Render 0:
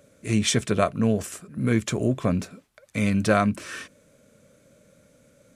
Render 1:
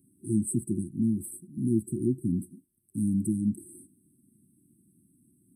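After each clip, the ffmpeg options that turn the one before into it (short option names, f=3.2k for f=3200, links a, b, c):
-af "highpass=f=210:p=1,afftfilt=real='re*(1-between(b*sr/4096,380,8000))':imag='im*(1-between(b*sr/4096,380,8000))':win_size=4096:overlap=0.75"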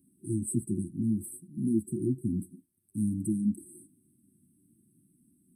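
-af "flanger=delay=3.6:depth=8.6:regen=-38:speed=0.56:shape=triangular,volume=2dB"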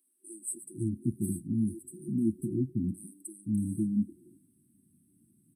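-filter_complex "[0:a]acrossover=split=490[a][b];[a]adelay=510[c];[c][b]amix=inputs=2:normalize=0"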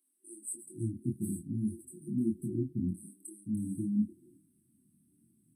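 -af "flanger=delay=22.5:depth=3.4:speed=1.7"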